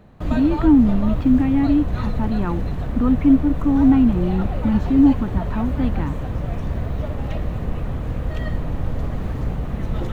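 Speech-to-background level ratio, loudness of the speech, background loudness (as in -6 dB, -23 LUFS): 7.5 dB, -19.0 LUFS, -26.5 LUFS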